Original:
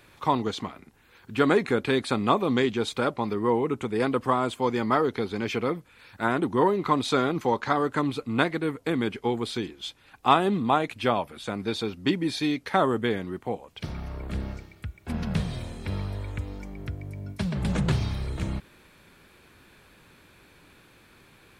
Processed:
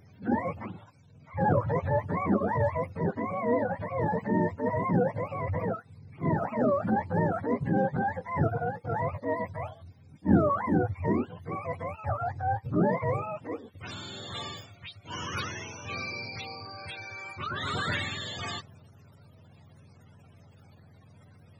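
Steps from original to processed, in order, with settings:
frequency axis turned over on the octave scale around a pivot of 480 Hz
transient designer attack −7 dB, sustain +2 dB

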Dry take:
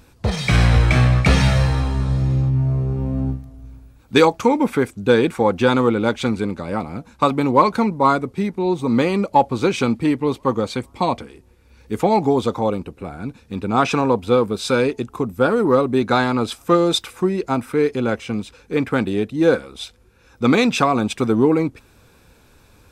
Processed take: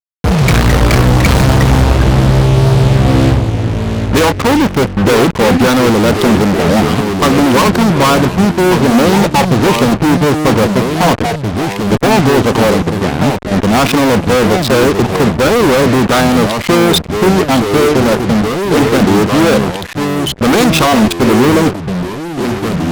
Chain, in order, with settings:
adaptive Wiener filter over 25 samples
0:17.78–0:19.07: mains-hum notches 50/100/150/200/250/300/350/400/450 Hz
fuzz pedal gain 40 dB, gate −35 dBFS
delay with pitch and tempo change per echo 124 ms, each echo −3 semitones, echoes 2, each echo −6 dB
level +5 dB

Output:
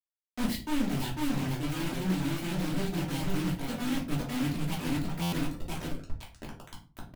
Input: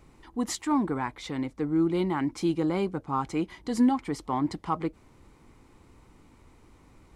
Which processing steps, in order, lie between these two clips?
each half-wave held at its own peak
low-shelf EQ 180 Hz +6.5 dB
phaser swept by the level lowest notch 380 Hz, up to 1,200 Hz, full sweep at −22.5 dBFS
dynamic equaliser 350 Hz, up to −6 dB, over −36 dBFS, Q 4.2
repeating echo 498 ms, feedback 32%, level −4 dB
reversed playback
downward compressor 12 to 1, threshold −31 dBFS, peak gain reduction 17.5 dB
reversed playback
bit reduction 6 bits
reverb reduction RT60 1.2 s
convolution reverb RT60 0.40 s, pre-delay 3 ms, DRR −3.5 dB
buffer that repeats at 0:05.22, samples 512, times 8
highs frequency-modulated by the lows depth 0.23 ms
level −2.5 dB

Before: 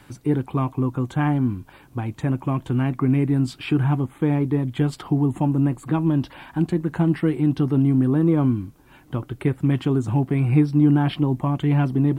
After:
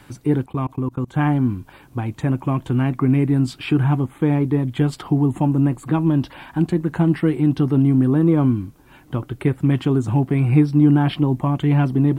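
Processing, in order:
0:00.44–0:01.14: output level in coarse steps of 24 dB
level +2.5 dB

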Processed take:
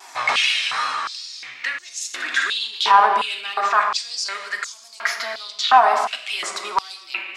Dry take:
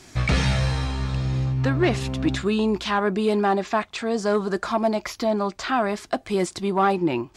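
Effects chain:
tape wow and flutter 73 cents
0:02.14–0:02.67: flutter between parallel walls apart 10.1 metres, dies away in 0.62 s
convolution reverb RT60 1.8 s, pre-delay 3 ms, DRR 2.5 dB
boost into a limiter +11 dB
high-pass on a step sequencer 2.8 Hz 900–6,400 Hz
level −7.5 dB

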